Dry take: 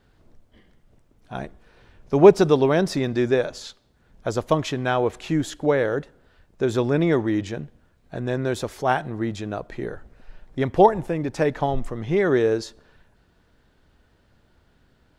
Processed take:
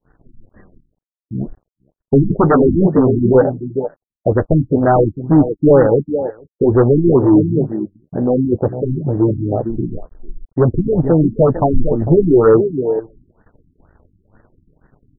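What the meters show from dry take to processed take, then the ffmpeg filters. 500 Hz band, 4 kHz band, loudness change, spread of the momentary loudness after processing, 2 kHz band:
+7.0 dB, under -40 dB, +7.5 dB, 14 LU, -2.5 dB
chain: -filter_complex "[0:a]asplit=2[a][b];[b]adelay=449,volume=-11dB,highshelf=f=4k:g=-10.1[c];[a][c]amix=inputs=2:normalize=0,afwtdn=0.0708,areverse,acompressor=mode=upward:threshold=-40dB:ratio=2.5,areverse,aeval=exprs='0.891*sin(PI/2*5.62*val(0)/0.891)':c=same,flanger=delay=6.5:depth=5.5:regen=-30:speed=0.54:shape=sinusoidal,aeval=exprs='sgn(val(0))*max(abs(val(0))-0.00473,0)':c=same,agate=range=-33dB:threshold=-40dB:ratio=3:detection=peak,afftfilt=real='re*lt(b*sr/1024,330*pow(2000/330,0.5+0.5*sin(2*PI*2.1*pts/sr)))':imag='im*lt(b*sr/1024,330*pow(2000/330,0.5+0.5*sin(2*PI*2.1*pts/sr)))':win_size=1024:overlap=0.75,volume=-1dB"

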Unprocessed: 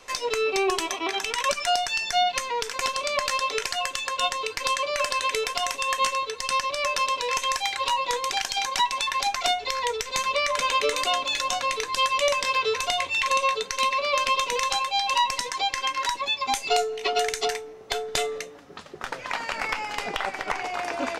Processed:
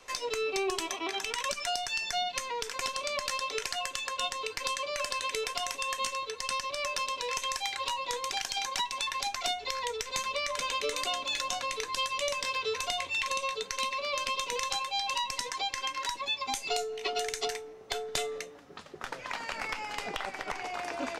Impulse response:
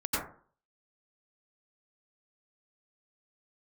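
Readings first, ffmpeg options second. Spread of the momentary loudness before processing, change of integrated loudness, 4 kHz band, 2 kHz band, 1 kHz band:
6 LU, -7.5 dB, -6.0 dB, -7.0 dB, -9.0 dB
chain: -filter_complex "[0:a]acrossover=split=380|3000[a][b][c];[b]acompressor=threshold=-29dB:ratio=3[d];[a][d][c]amix=inputs=3:normalize=0,volume=-5dB"

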